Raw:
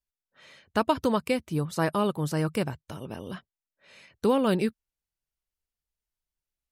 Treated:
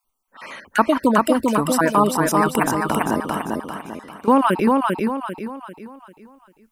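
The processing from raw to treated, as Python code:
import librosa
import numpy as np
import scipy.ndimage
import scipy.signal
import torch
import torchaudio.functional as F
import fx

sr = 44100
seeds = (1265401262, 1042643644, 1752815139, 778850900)

p1 = fx.spec_dropout(x, sr, seeds[0], share_pct=32)
p2 = fx.graphic_eq(p1, sr, hz=(250, 500, 1000, 4000), db=(8, -4, 8, -9))
p3 = fx.over_compress(p2, sr, threshold_db=-35.0, ratio=-1.0)
p4 = p2 + (p3 * librosa.db_to_amplitude(-0.5))
p5 = fx.peak_eq(p4, sr, hz=110.0, db=-15.0, octaves=1.6)
p6 = fx.level_steps(p5, sr, step_db=19, at=(3.21, 4.28))
p7 = p6 + fx.echo_feedback(p6, sr, ms=395, feedback_pct=40, wet_db=-3, dry=0)
y = p7 * librosa.db_to_amplitude(7.0)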